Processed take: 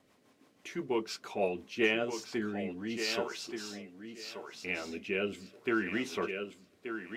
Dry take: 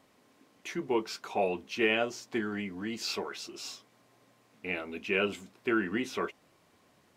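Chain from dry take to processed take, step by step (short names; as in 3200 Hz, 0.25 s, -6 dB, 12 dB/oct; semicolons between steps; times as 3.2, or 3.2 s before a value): thinning echo 1.179 s, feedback 23%, high-pass 200 Hz, level -7 dB; rotary speaker horn 6 Hz, later 0.75 Hz, at 1.46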